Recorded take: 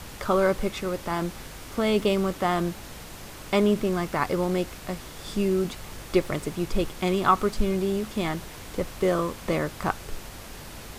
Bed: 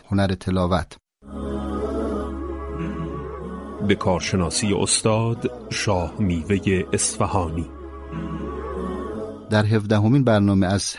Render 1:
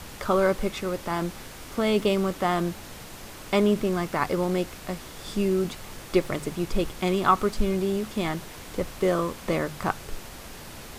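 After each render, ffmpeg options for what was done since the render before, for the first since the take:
-af "bandreject=f=50:t=h:w=4,bandreject=f=100:t=h:w=4,bandreject=f=150:t=h:w=4"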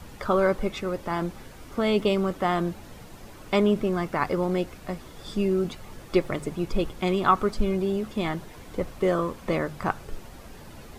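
-af "afftdn=nr=9:nf=-42"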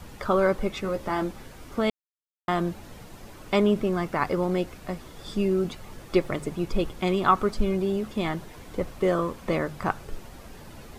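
-filter_complex "[0:a]asettb=1/sr,asplit=3[s0][s1][s2];[s0]atrim=end=0.824[s3];[s1]atrim=start=0.82:end=1.31,asetpts=PTS-STARTPTS,afade=t=in:d=0.004:c=qsin,afade=t=out:st=0.486:d=0.004:c=qsin,asplit=2[s4][s5];[s5]adelay=15,volume=0.501[s6];[s4][s6]amix=inputs=2:normalize=0,atrim=end_sample=21609[s7];[s2]atrim=start=1.306[s8];[s3][s7]acrossfade=d=0.004:c1=hsin:c2=qsin[s9];[s9][s8]acrossfade=d=0.004:c1=qsin:c2=hsin,asplit=3[s10][s11][s12];[s10]atrim=end=1.9,asetpts=PTS-STARTPTS,afade=t=out:st=1.896:d=0.004:c=hsin[s13];[s11]atrim=start=1.9:end=2.48,asetpts=PTS-STARTPTS,volume=0[s14];[s12]atrim=start=2.48,asetpts=PTS-STARTPTS,afade=t=in:d=0.004:c=hsin[s15];[s13][s14][s15]concat=n=3:v=0:a=1"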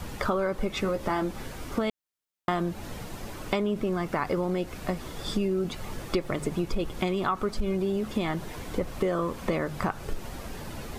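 -filter_complex "[0:a]asplit=2[s0][s1];[s1]alimiter=limit=0.126:level=0:latency=1:release=36,volume=1[s2];[s0][s2]amix=inputs=2:normalize=0,acompressor=threshold=0.0631:ratio=6"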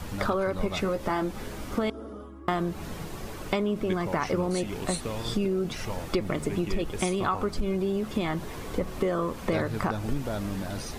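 -filter_complex "[1:a]volume=0.168[s0];[0:a][s0]amix=inputs=2:normalize=0"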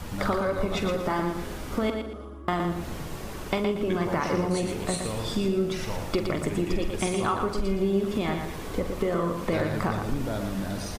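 -filter_complex "[0:a]asplit=2[s0][s1];[s1]adelay=46,volume=0.299[s2];[s0][s2]amix=inputs=2:normalize=0,asplit=2[s3][s4];[s4]aecho=0:1:117|234|351|468:0.501|0.155|0.0482|0.0149[s5];[s3][s5]amix=inputs=2:normalize=0"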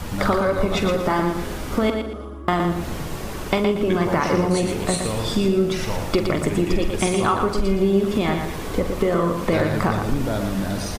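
-af "volume=2.11"

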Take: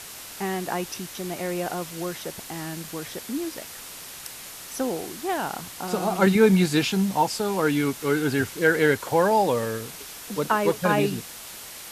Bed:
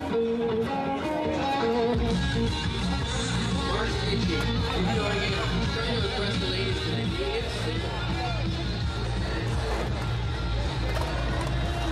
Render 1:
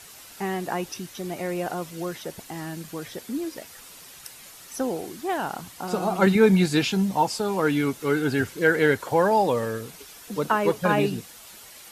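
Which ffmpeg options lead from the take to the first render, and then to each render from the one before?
-af "afftdn=nr=8:nf=-41"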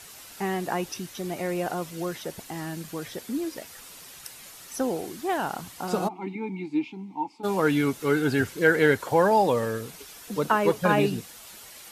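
-filter_complex "[0:a]asplit=3[s0][s1][s2];[s0]afade=t=out:st=6.07:d=0.02[s3];[s1]asplit=3[s4][s5][s6];[s4]bandpass=f=300:t=q:w=8,volume=1[s7];[s5]bandpass=f=870:t=q:w=8,volume=0.501[s8];[s6]bandpass=f=2240:t=q:w=8,volume=0.355[s9];[s7][s8][s9]amix=inputs=3:normalize=0,afade=t=in:st=6.07:d=0.02,afade=t=out:st=7.43:d=0.02[s10];[s2]afade=t=in:st=7.43:d=0.02[s11];[s3][s10][s11]amix=inputs=3:normalize=0"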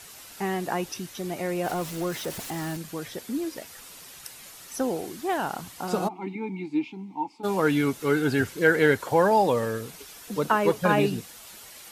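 -filter_complex "[0:a]asettb=1/sr,asplit=3[s0][s1][s2];[s0]atrim=end=1.644[s3];[s1]atrim=start=1.64:end=2.77,asetpts=PTS-STARTPTS,afade=t=in:d=0.004:c=qsin,afade=t=out:st=1.126:d=0.004:c=qsin,aeval=exprs='val(0)+0.5*0.0168*sgn(val(0))':c=same[s4];[s2]atrim=start=2.766[s5];[s3][s4]acrossfade=d=0.004:c1=hsin:c2=qsin[s6];[s6][s5]acrossfade=d=0.004:c1=qsin:c2=hsin"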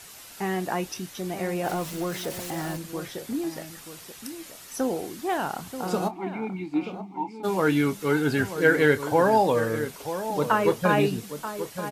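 -filter_complex "[0:a]asplit=2[s0][s1];[s1]adelay=27,volume=0.224[s2];[s0][s2]amix=inputs=2:normalize=0,asplit=2[s3][s4];[s4]adelay=932.9,volume=0.316,highshelf=f=4000:g=-21[s5];[s3][s5]amix=inputs=2:normalize=0"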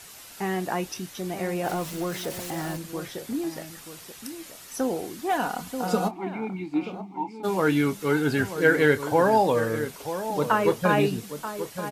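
-filter_complex "[0:a]asettb=1/sr,asplit=3[s0][s1][s2];[s0]atrim=end=5.304[s3];[s1]atrim=start=5.3:end=6.11,asetpts=PTS-STARTPTS,afade=t=in:d=0.004:c=qsin,afade=t=out:st=0.806:d=0.004:c=qsin,aecho=1:1:4.1:0.65,atrim=end_sample=35721[s4];[s2]atrim=start=6.106[s5];[s3][s4]acrossfade=d=0.004:c1=hsin:c2=qsin[s6];[s6][s5]acrossfade=d=0.004:c1=qsin:c2=hsin"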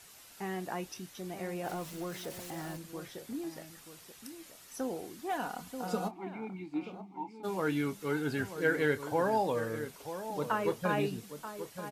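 -af "volume=0.335"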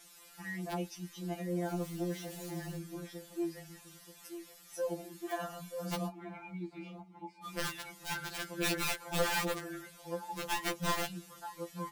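-af "aeval=exprs='(mod(15*val(0)+1,2)-1)/15':c=same,afftfilt=real='re*2.83*eq(mod(b,8),0)':imag='im*2.83*eq(mod(b,8),0)':win_size=2048:overlap=0.75"

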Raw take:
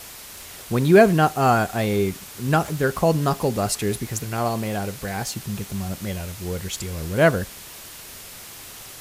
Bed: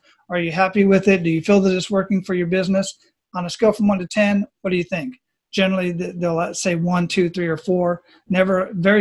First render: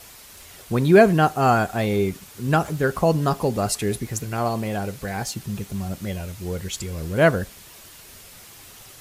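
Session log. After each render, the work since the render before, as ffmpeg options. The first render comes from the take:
-af "afftdn=nr=6:nf=-40"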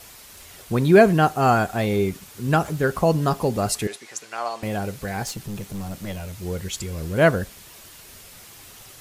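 -filter_complex "[0:a]asettb=1/sr,asplit=3[s0][s1][s2];[s0]atrim=end=3.874[s3];[s1]atrim=start=3.87:end=4.63,asetpts=PTS-STARTPTS,afade=t=in:d=0.004:c=qsin,afade=t=out:st=0.756:d=0.004:c=qsin,highpass=730,lowpass=7400[s4];[s2]atrim=start=4.626[s5];[s3][s4]acrossfade=d=0.004:c1=hsin:c2=qsin[s6];[s6][s5]acrossfade=d=0.004:c1=qsin:c2=hsin,asettb=1/sr,asplit=3[s7][s8][s9];[s7]atrim=end=5.274[s10];[s8]atrim=start=5.27:end=6.43,asetpts=PTS-STARTPTS,afade=t=in:d=0.004:c=qsin,afade=t=out:st=1.156:d=0.004:c=qsin,aeval=exprs='clip(val(0),-1,0.0316)':c=same[s11];[s9]atrim=start=6.426[s12];[s10][s11]acrossfade=d=0.004:c1=hsin:c2=qsin[s13];[s13][s12]acrossfade=d=0.004:c1=qsin:c2=hsin"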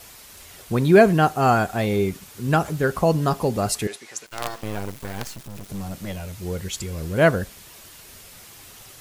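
-filter_complex "[0:a]asettb=1/sr,asplit=3[s0][s1][s2];[s0]atrim=end=4.264[s3];[s1]atrim=start=4.26:end=5.69,asetpts=PTS-STARTPTS,afade=t=in:d=0.004:c=qsin,afade=t=out:st=1.426:d=0.004:c=qsin,acrusher=bits=4:dc=4:mix=0:aa=0.000001[s4];[s2]atrim=start=5.686[s5];[s3][s4]acrossfade=d=0.004:c1=hsin:c2=qsin[s6];[s6][s5]acrossfade=d=0.004:c1=qsin:c2=hsin"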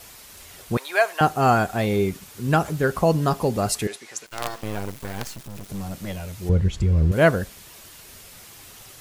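-filter_complex "[0:a]asettb=1/sr,asplit=3[s0][s1][s2];[s0]atrim=end=0.774[s3];[s1]atrim=start=0.77:end=1.21,asetpts=PTS-STARTPTS,afade=t=in:d=0.004:c=qsin,afade=t=out:st=0.436:d=0.004:c=qsin,highpass=f=710:w=0.5412,highpass=f=710:w=1.3066[s4];[s2]atrim=start=1.206[s5];[s3][s4]acrossfade=d=0.004:c1=hsin:c2=qsin[s6];[s6][s5]acrossfade=d=0.004:c1=qsin:c2=hsin,asettb=1/sr,asplit=3[s7][s8][s9];[s7]atrim=end=6.494[s10];[s8]atrim=start=6.49:end=7.12,asetpts=PTS-STARTPTS,afade=t=in:d=0.004:c=qsin,afade=t=out:st=0.626:d=0.004:c=qsin,aemphasis=mode=reproduction:type=riaa[s11];[s9]atrim=start=7.116[s12];[s10][s11]acrossfade=d=0.004:c1=hsin:c2=qsin[s13];[s13][s12]acrossfade=d=0.004:c1=qsin:c2=hsin"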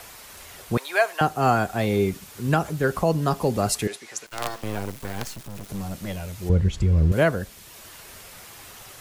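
-filter_complex "[0:a]acrossover=split=310|430|2200[s0][s1][s2][s3];[s2]acompressor=mode=upward:threshold=0.00708:ratio=2.5[s4];[s0][s1][s4][s3]amix=inputs=4:normalize=0,alimiter=limit=0.355:level=0:latency=1:release=487"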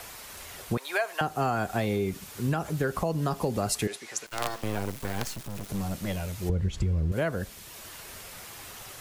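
-af "alimiter=limit=0.211:level=0:latency=1:release=244,acompressor=threshold=0.0708:ratio=6"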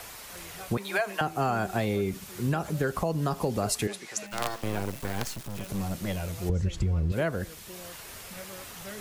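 -filter_complex "[1:a]volume=0.0376[s0];[0:a][s0]amix=inputs=2:normalize=0"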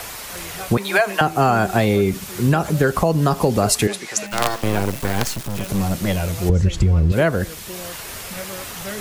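-af "volume=3.55"

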